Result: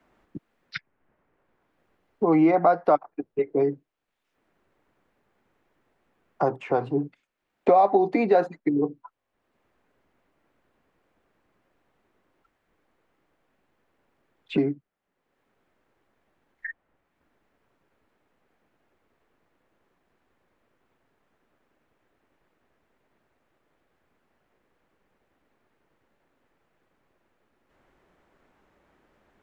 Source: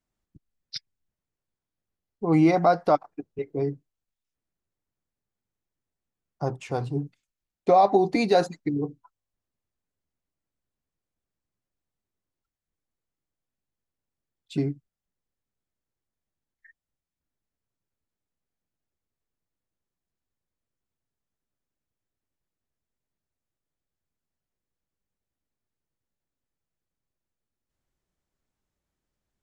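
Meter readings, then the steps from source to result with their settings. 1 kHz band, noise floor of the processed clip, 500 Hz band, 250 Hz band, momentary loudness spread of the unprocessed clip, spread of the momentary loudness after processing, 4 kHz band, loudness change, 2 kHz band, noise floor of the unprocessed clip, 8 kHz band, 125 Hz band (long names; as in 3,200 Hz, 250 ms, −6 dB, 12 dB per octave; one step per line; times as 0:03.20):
+0.5 dB, −78 dBFS, +2.0 dB, +1.0 dB, 19 LU, 20 LU, −7.5 dB, +1.0 dB, +1.0 dB, below −85 dBFS, can't be measured, −5.0 dB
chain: three-way crossover with the lows and the highs turned down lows −13 dB, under 240 Hz, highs −21 dB, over 2,600 Hz
multiband upward and downward compressor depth 70%
level +4 dB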